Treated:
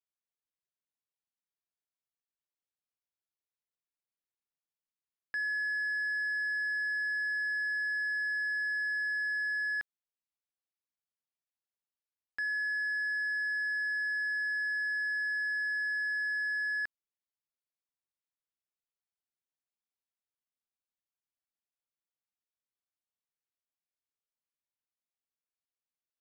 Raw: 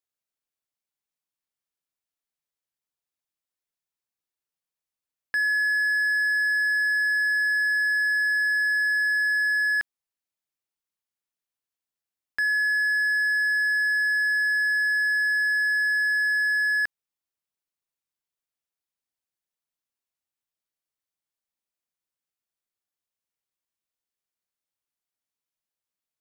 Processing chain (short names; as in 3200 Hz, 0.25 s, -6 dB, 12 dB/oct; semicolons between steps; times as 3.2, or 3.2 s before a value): air absorption 75 m; gain -9 dB